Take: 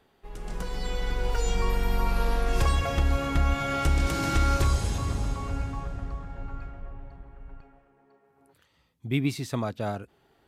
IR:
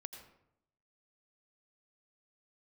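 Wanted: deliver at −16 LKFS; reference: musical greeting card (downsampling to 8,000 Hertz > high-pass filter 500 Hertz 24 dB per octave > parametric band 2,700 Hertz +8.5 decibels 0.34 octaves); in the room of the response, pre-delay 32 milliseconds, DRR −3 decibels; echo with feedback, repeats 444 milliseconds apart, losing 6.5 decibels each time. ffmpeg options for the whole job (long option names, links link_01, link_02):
-filter_complex "[0:a]aecho=1:1:444|888|1332|1776|2220|2664:0.473|0.222|0.105|0.0491|0.0231|0.0109,asplit=2[link_01][link_02];[1:a]atrim=start_sample=2205,adelay=32[link_03];[link_02][link_03]afir=irnorm=-1:irlink=0,volume=7dB[link_04];[link_01][link_04]amix=inputs=2:normalize=0,aresample=8000,aresample=44100,highpass=frequency=500:width=0.5412,highpass=frequency=500:width=1.3066,equalizer=frequency=2700:width_type=o:width=0.34:gain=8.5,volume=11.5dB"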